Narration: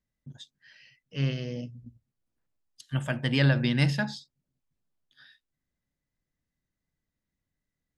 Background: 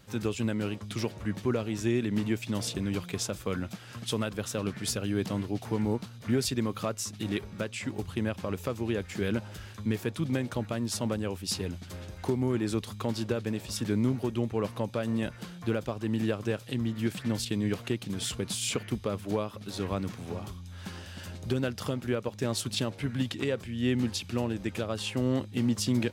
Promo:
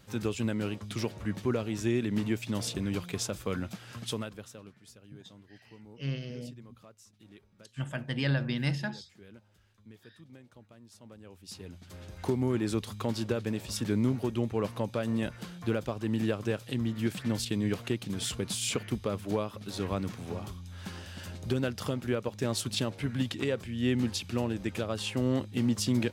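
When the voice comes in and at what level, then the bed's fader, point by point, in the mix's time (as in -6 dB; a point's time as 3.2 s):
4.85 s, -6.0 dB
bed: 4.04 s -1 dB
4.83 s -23 dB
10.97 s -23 dB
12.25 s -0.5 dB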